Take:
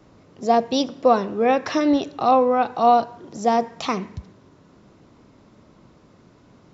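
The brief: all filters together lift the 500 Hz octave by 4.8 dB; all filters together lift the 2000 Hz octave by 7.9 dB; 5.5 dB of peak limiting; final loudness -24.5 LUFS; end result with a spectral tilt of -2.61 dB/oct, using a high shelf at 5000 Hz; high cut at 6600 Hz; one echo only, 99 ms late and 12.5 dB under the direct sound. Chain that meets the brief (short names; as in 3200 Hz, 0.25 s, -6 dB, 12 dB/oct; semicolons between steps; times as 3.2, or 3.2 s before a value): LPF 6600 Hz; bell 500 Hz +5 dB; bell 2000 Hz +9 dB; high shelf 5000 Hz +5 dB; limiter -6 dBFS; echo 99 ms -12.5 dB; gain -6.5 dB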